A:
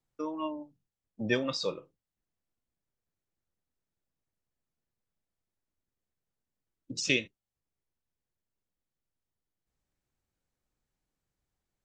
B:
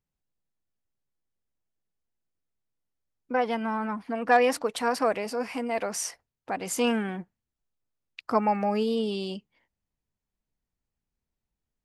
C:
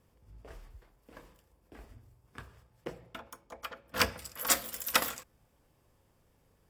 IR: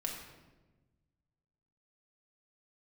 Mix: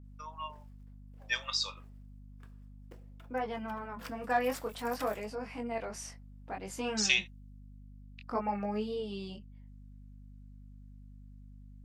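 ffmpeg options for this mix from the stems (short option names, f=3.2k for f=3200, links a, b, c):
-filter_complex "[0:a]highpass=f=910:w=0.5412,highpass=f=910:w=1.3066,adynamicequalizer=threshold=0.00794:dfrequency=2900:dqfactor=0.7:tfrequency=2900:tqfactor=0.7:attack=5:release=100:ratio=0.375:range=2.5:mode=boostabove:tftype=highshelf,volume=-0.5dB[a];[1:a]flanger=delay=19:depth=4.8:speed=0.57,highshelf=f=8.2k:g=-10,volume=-6dB[b];[2:a]alimiter=limit=-15dB:level=0:latency=1:release=239,acrusher=bits=4:mode=log:mix=0:aa=0.000001,adelay=50,volume=-15.5dB[c];[a][b][c]amix=inputs=3:normalize=0,aeval=exprs='val(0)+0.00316*(sin(2*PI*50*n/s)+sin(2*PI*2*50*n/s)/2+sin(2*PI*3*50*n/s)/3+sin(2*PI*4*50*n/s)/4+sin(2*PI*5*50*n/s)/5)':c=same"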